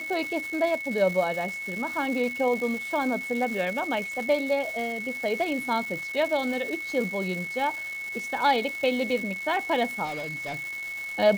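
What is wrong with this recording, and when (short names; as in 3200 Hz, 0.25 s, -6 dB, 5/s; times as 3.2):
crackle 590/s -33 dBFS
tone 2200 Hz -32 dBFS
10.04–10.58 clipped -29.5 dBFS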